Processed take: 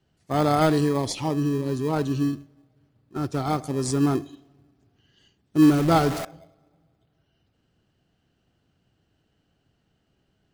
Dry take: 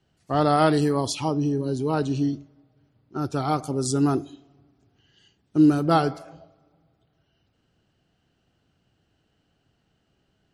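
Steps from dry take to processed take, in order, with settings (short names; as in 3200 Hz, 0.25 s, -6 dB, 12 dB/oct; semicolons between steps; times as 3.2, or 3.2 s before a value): 5.62–6.25 zero-crossing step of -25 dBFS; in parallel at -10.5 dB: sample-and-hold 31×; on the sum: gain -2 dB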